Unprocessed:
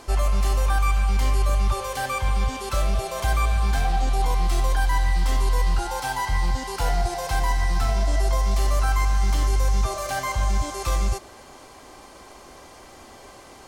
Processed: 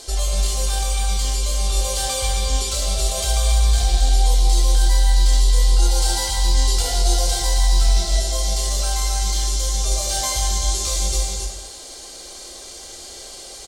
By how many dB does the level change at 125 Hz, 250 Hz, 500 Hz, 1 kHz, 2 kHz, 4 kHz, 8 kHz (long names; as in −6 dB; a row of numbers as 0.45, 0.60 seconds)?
+3.0, −2.0, +0.5, −3.0, −3.0, +12.0, +14.0 decibels